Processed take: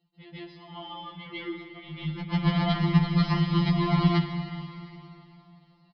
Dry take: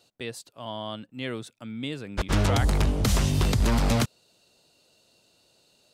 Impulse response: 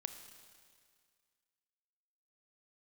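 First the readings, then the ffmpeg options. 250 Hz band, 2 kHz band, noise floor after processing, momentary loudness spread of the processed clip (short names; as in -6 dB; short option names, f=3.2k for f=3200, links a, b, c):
+3.5 dB, -1.5 dB, -61 dBFS, 20 LU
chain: -filter_complex "[0:a]highpass=f=50:p=1,bass=f=250:g=13,treble=f=4k:g=2,aecho=1:1:6.8:0.81,flanger=delay=6.3:depth=1.4:regen=-37:speed=1.5:shape=triangular,adynamicsmooth=sensitivity=4:basefreq=2.5k,aecho=1:1:352|704|1056:0.0794|0.035|0.0154,asplit=2[a][b];[1:a]atrim=start_sample=2205,asetrate=28665,aresample=44100,adelay=146[c];[b][c]afir=irnorm=-1:irlink=0,volume=9dB[d];[a][d]amix=inputs=2:normalize=0,aresample=11025,aresample=44100,afftfilt=real='re*2.83*eq(mod(b,8),0)':imag='im*2.83*eq(mod(b,8),0)':win_size=2048:overlap=0.75,volume=-6dB"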